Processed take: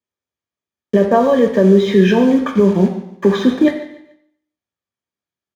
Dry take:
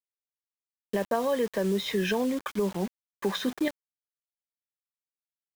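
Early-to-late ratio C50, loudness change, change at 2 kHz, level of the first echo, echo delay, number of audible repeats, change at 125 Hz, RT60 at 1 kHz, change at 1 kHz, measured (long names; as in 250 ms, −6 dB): 7.5 dB, +15.5 dB, +10.0 dB, −16.0 dB, 146 ms, 2, +18.0 dB, 0.80 s, +13.0 dB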